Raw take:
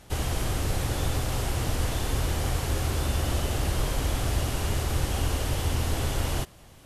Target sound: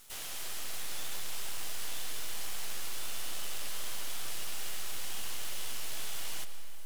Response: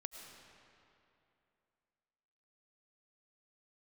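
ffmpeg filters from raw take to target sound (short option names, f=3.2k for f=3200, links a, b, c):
-filter_complex "[0:a]acrossover=split=4500[a][b];[b]acompressor=threshold=-47dB:ratio=4:attack=1:release=60[c];[a][c]amix=inputs=2:normalize=0,aderivative,aeval=exprs='max(val(0),0)':c=same,asplit=2[d][e];[1:a]atrim=start_sample=2205[f];[e][f]afir=irnorm=-1:irlink=0,volume=6dB[g];[d][g]amix=inputs=2:normalize=0,volume=1dB"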